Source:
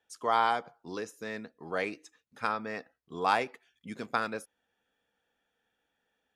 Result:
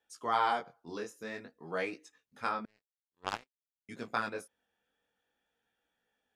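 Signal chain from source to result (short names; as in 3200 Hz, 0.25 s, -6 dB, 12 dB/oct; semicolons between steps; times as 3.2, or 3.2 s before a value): chorus 0.52 Hz, delay 16.5 ms, depth 7.6 ms; 2.65–3.89 power-law curve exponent 3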